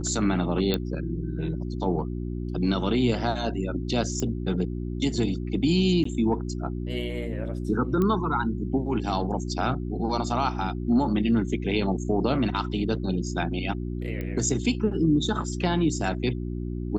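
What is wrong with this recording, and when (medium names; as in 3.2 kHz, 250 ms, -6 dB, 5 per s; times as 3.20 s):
hum 60 Hz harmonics 6 -31 dBFS
0.74 s: pop -12 dBFS
4.20 s: pop -16 dBFS
6.04–6.05 s: dropout 14 ms
8.02 s: pop -15 dBFS
14.21 s: pop -21 dBFS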